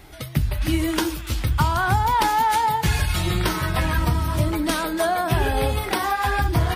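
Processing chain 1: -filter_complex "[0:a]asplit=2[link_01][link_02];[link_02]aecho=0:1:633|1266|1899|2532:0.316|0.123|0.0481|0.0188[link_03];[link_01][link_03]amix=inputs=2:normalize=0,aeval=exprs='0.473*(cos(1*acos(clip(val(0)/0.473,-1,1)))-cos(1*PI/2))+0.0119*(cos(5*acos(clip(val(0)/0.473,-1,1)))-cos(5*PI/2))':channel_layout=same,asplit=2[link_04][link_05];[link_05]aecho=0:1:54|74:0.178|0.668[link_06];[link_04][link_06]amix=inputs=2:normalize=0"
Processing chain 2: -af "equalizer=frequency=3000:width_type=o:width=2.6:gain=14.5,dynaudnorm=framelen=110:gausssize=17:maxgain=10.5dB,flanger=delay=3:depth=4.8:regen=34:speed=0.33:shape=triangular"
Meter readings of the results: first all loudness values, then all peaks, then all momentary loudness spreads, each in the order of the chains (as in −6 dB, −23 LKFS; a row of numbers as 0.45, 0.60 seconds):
−19.5, −20.5 LKFS; −5.0, −4.0 dBFS; 5, 6 LU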